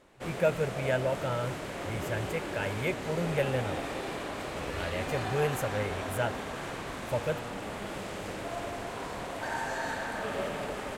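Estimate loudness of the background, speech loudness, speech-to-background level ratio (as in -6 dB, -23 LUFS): -36.0 LUFS, -33.5 LUFS, 2.5 dB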